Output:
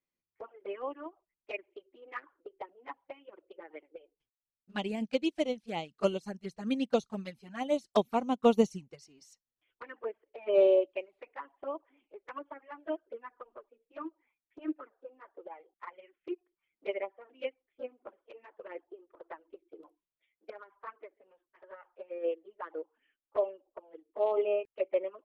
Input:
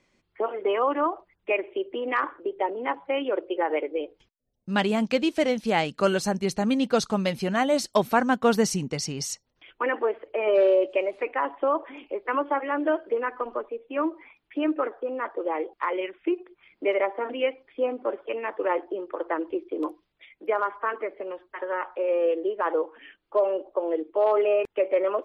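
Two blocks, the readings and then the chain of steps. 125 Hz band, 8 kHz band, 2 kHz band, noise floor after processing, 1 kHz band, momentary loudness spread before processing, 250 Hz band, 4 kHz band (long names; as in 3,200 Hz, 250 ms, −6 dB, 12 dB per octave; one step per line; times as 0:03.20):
−12.0 dB, below −15 dB, −15.0 dB, below −85 dBFS, −13.0 dB, 9 LU, −9.0 dB, −11.0 dB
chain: flanger swept by the level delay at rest 11.7 ms, full sweep at −19 dBFS
expander for the loud parts 2.5 to 1, over −34 dBFS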